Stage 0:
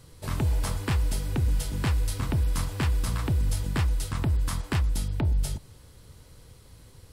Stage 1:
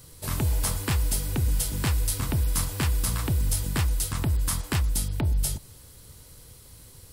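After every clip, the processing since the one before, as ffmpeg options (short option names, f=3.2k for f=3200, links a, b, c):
-af "aemphasis=mode=production:type=50kf"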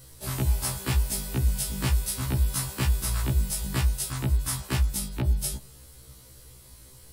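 -af "afftfilt=real='re*1.73*eq(mod(b,3),0)':imag='im*1.73*eq(mod(b,3),0)':win_size=2048:overlap=0.75,volume=1.5dB"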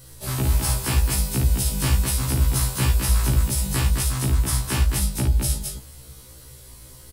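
-af "aecho=1:1:55.39|212.8:0.631|0.631,volume=3dB"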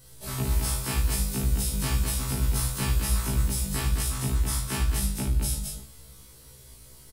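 -af "aecho=1:1:20|45|76.25|115.3|164.1:0.631|0.398|0.251|0.158|0.1,volume=-7dB"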